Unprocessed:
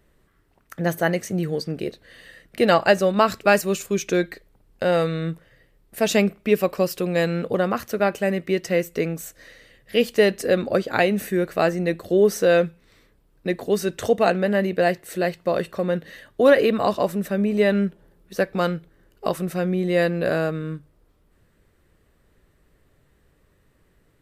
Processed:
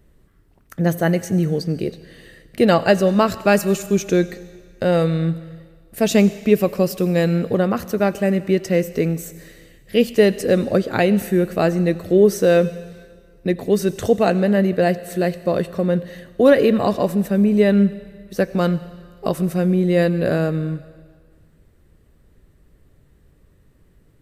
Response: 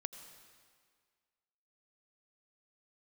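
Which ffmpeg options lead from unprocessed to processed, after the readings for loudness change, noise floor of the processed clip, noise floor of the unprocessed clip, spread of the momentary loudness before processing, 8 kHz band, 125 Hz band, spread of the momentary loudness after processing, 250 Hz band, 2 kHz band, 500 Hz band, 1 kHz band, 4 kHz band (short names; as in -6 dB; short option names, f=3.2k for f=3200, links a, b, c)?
+3.5 dB, -55 dBFS, -62 dBFS, 11 LU, +1.5 dB, +7.0 dB, 10 LU, +6.5 dB, -1.0 dB, +2.5 dB, 0.0 dB, 0.0 dB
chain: -filter_complex "[0:a]lowshelf=f=450:g=11.5,asplit=2[a][b];[1:a]atrim=start_sample=2205,highshelf=f=2.4k:g=11[c];[b][c]afir=irnorm=-1:irlink=0,volume=-4.5dB[d];[a][d]amix=inputs=2:normalize=0,volume=-6dB"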